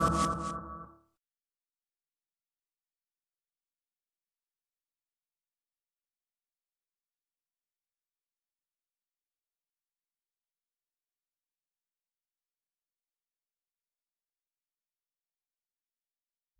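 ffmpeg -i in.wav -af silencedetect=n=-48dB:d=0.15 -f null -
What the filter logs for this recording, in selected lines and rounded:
silence_start: 0.91
silence_end: 16.59 | silence_duration: 15.68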